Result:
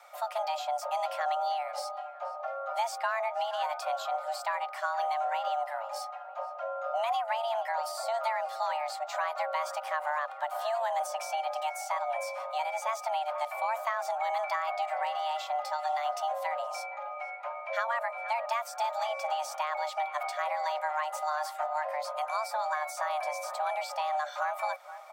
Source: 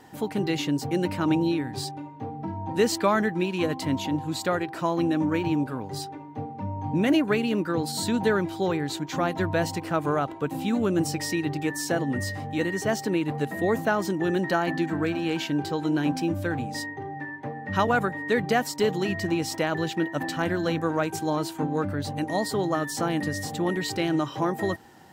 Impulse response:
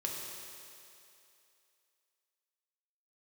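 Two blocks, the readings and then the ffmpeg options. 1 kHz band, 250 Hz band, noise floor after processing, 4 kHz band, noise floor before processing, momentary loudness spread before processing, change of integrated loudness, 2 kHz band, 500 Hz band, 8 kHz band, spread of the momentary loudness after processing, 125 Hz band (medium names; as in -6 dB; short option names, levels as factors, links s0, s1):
+2.0 dB, under -40 dB, -43 dBFS, -7.5 dB, -40 dBFS, 9 LU, -6.0 dB, -6.0 dB, -7.0 dB, -8.5 dB, 5 LU, under -40 dB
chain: -filter_complex "[0:a]asplit=2[s0][s1];[s1]adelay=472,lowpass=f=1300:p=1,volume=0.15,asplit=2[s2][s3];[s3]adelay=472,lowpass=f=1300:p=1,volume=0.46,asplit=2[s4][s5];[s5]adelay=472,lowpass=f=1300:p=1,volume=0.46,asplit=2[s6][s7];[s7]adelay=472,lowpass=f=1300:p=1,volume=0.46[s8];[s0][s2][s4][s6][s8]amix=inputs=5:normalize=0,afreqshift=450,acrossover=split=510|1600[s9][s10][s11];[s9]acompressor=threshold=0.00891:ratio=4[s12];[s10]acompressor=threshold=0.0501:ratio=4[s13];[s11]acompressor=threshold=0.0126:ratio=4[s14];[s12][s13][s14]amix=inputs=3:normalize=0,volume=0.668"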